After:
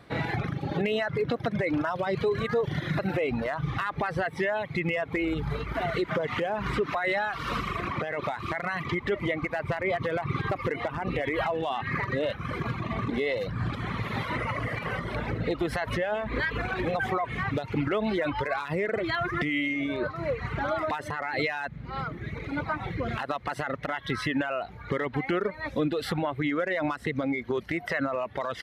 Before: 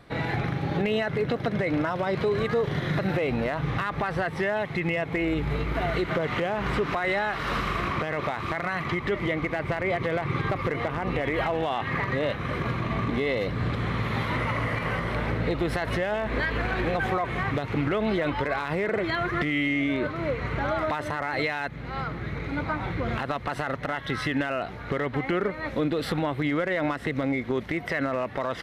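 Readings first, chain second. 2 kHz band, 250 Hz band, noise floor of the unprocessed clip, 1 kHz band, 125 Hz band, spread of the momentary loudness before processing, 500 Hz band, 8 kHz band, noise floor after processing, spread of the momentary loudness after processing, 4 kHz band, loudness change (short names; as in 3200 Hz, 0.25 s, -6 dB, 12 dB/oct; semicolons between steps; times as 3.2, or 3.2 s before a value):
-2.0 dB, -2.5 dB, -36 dBFS, -2.0 dB, -3.0 dB, 4 LU, -1.5 dB, n/a, -43 dBFS, 4 LU, -2.0 dB, -2.0 dB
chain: reverb removal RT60 1.7 s; HPF 50 Hz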